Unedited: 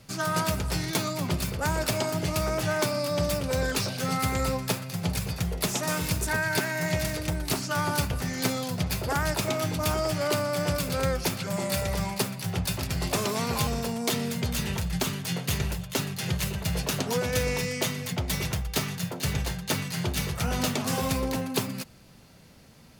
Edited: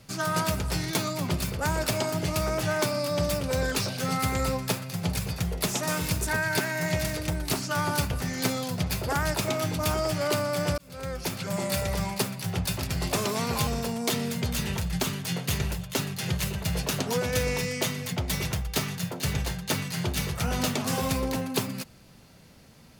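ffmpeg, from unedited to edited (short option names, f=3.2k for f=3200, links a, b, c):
-filter_complex "[0:a]asplit=2[a][b];[a]atrim=end=10.78,asetpts=PTS-STARTPTS,afade=t=out:st=10.776:d=0.004:c=hsin[c];[b]atrim=start=10.78,asetpts=PTS-STARTPTS,afade=t=in:d=0.73[d];[c][d]concat=n=2:v=0:a=1"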